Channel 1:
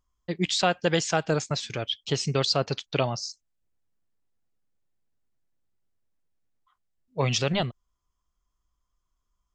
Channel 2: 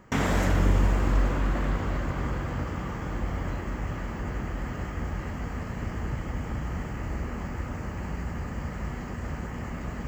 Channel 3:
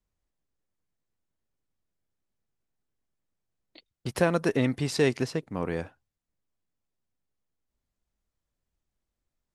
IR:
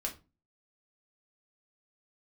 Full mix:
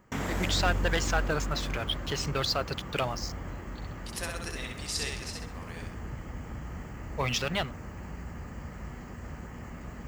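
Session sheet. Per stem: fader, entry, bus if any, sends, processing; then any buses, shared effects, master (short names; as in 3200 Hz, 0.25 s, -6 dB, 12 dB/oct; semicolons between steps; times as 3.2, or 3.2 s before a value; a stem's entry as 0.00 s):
-15.0 dB, 0.00 s, no send, no echo send, bell 1600 Hz +10.5 dB 1.9 oct; sample leveller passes 2
-7.5 dB, 0.00 s, no send, no echo send, dry
-0.5 dB, 0.00 s, no send, echo send -3 dB, band-pass 6200 Hz, Q 0.66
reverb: off
echo: feedback echo 65 ms, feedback 36%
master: high shelf 9700 Hz +8 dB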